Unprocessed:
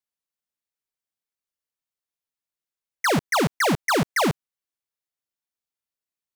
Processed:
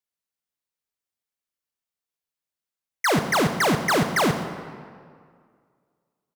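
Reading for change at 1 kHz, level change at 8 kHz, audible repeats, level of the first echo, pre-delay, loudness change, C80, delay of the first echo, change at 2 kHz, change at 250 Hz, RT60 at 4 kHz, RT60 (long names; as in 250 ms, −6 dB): +1.0 dB, +0.5 dB, 1, −15.5 dB, 22 ms, +0.5 dB, 9.0 dB, 131 ms, +1.0 dB, +1.0 dB, 1.3 s, 2.1 s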